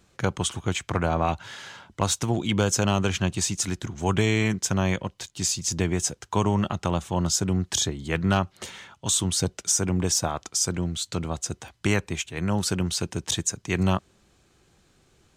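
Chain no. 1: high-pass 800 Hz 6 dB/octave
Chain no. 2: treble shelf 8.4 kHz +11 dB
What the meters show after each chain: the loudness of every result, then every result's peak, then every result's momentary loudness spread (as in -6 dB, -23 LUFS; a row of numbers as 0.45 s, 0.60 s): -28.5 LUFS, -24.0 LUFS; -9.5 dBFS, -5.0 dBFS; 9 LU, 9 LU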